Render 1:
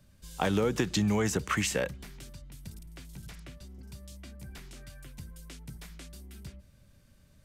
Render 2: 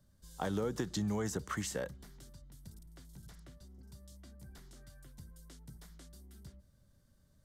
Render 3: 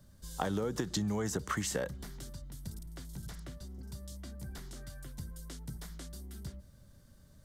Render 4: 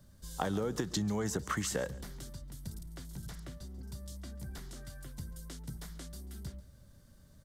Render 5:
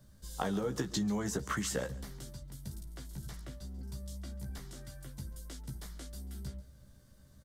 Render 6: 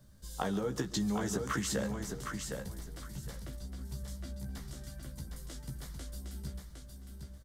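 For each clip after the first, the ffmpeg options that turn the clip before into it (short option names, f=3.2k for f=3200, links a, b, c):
-af "equalizer=f=2.5k:t=o:w=0.51:g=-13,volume=-7.5dB"
-af "acompressor=threshold=-40dB:ratio=4,volume=9dB"
-af "aecho=1:1:139|278:0.106|0.0275"
-filter_complex "[0:a]asplit=2[a][b];[b]adelay=15,volume=-5dB[c];[a][c]amix=inputs=2:normalize=0,volume=-1.5dB"
-af "aecho=1:1:760|1520|2280:0.531|0.111|0.0234"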